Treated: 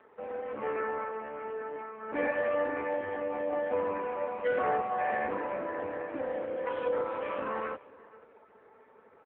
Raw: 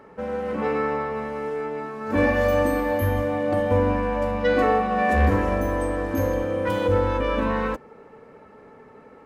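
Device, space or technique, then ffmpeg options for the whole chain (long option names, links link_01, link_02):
satellite phone: -af "highpass=370,lowpass=3100,aecho=1:1:486:0.0841,volume=-6dB" -ar 8000 -c:a libopencore_amrnb -b:a 5900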